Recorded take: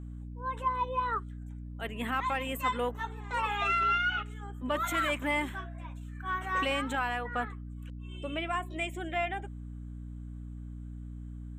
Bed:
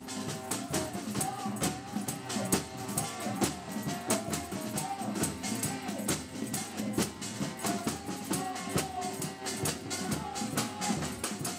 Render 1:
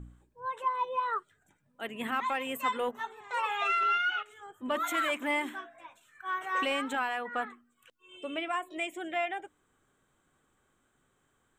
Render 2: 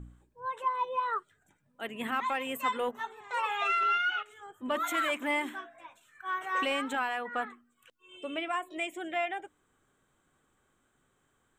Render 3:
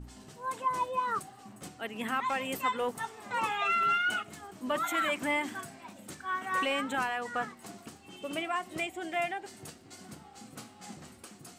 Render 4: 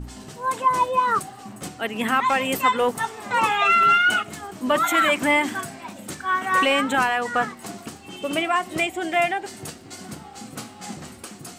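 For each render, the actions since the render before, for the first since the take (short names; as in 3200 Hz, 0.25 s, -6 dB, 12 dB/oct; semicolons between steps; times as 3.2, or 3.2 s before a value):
de-hum 60 Hz, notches 5
nothing audible
add bed -14.5 dB
gain +11 dB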